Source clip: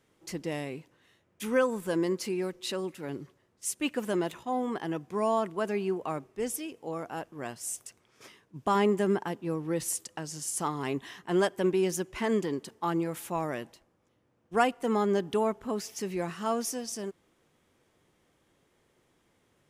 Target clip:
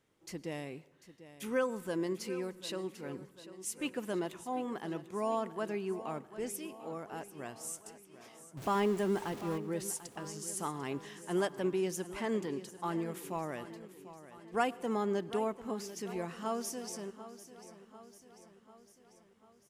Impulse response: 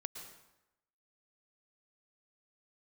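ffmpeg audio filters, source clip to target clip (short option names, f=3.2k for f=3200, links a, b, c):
-filter_complex "[0:a]asettb=1/sr,asplit=3[a][b][c];[a]atrim=end=8.574[d];[b]atrim=start=8.57:end=9.58,asetpts=PTS-STARTPTS,afade=t=in:d=0.004:c=qsin,afade=t=out:st=1.006:d=0.004:c=qsin,aeval=exprs='val(0)+0.5*0.0178*sgn(val(0))':c=same[e];[c]atrim=start=9.576[f];[d][e]acrossfade=d=0.004:c1=hsin:c2=qsin[g];[g][f]acrossfade=d=0.004:c1=qsin:c2=hsin,aecho=1:1:744|1488|2232|2976|3720|4464:0.188|0.105|0.0591|0.0331|0.0185|0.0104,asplit=2[h][i];[1:a]atrim=start_sample=2205,asetrate=48510,aresample=44100[j];[i][j]afir=irnorm=-1:irlink=0,volume=-11.5dB[k];[h][k]amix=inputs=2:normalize=0,volume=-7.5dB"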